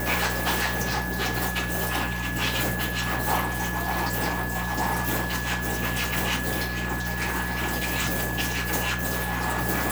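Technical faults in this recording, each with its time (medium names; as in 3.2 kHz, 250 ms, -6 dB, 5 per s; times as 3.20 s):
hum 60 Hz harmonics 3 -32 dBFS
whine 1.7 kHz -32 dBFS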